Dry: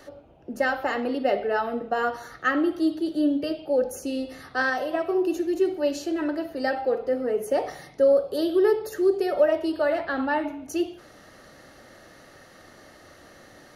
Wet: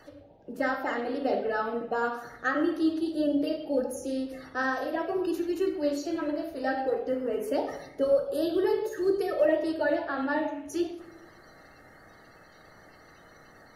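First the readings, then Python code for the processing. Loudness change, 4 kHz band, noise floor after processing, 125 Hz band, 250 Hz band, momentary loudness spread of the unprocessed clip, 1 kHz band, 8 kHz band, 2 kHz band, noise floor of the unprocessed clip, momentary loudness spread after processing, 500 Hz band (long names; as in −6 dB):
−4.0 dB, −4.5 dB, −55 dBFS, can't be measured, −3.0 dB, 7 LU, −3.5 dB, −4.5 dB, −4.5 dB, −51 dBFS, 7 LU, −4.5 dB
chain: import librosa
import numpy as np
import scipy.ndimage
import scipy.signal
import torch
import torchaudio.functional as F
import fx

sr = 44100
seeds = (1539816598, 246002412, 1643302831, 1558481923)

y = fx.spec_quant(x, sr, step_db=30)
y = fx.room_shoebox(y, sr, seeds[0], volume_m3=200.0, walls='mixed', distance_m=0.56)
y = y * librosa.db_to_amplitude(-4.5)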